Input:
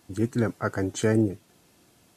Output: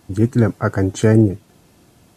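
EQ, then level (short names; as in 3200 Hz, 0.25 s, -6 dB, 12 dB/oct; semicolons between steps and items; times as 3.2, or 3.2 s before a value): low shelf 220 Hz +10.5 dB; bell 800 Hz +3 dB 2.1 oct; +4.0 dB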